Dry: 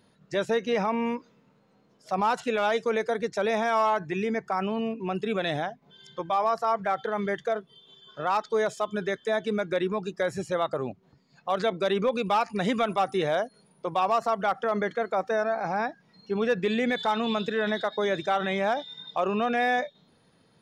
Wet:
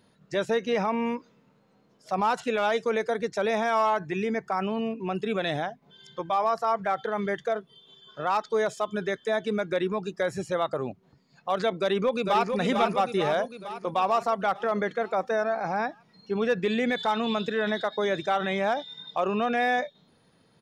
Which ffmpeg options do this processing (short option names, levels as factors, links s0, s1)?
-filter_complex "[0:a]asplit=2[s0][s1];[s1]afade=t=in:st=11.78:d=0.01,afade=t=out:st=12.55:d=0.01,aecho=0:1:450|900|1350|1800|2250|2700|3150|3600:0.562341|0.337405|0.202443|0.121466|0.0728794|0.0437277|0.0262366|0.015742[s2];[s0][s2]amix=inputs=2:normalize=0"